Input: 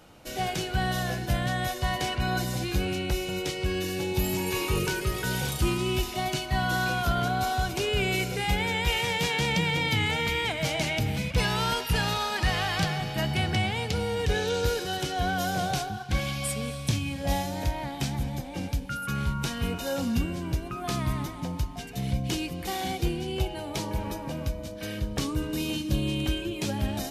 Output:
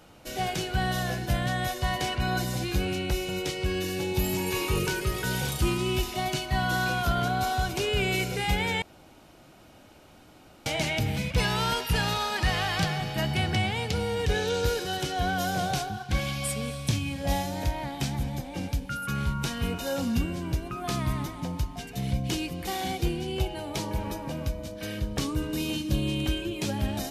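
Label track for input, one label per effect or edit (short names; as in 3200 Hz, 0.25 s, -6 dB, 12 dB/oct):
8.820000	10.660000	room tone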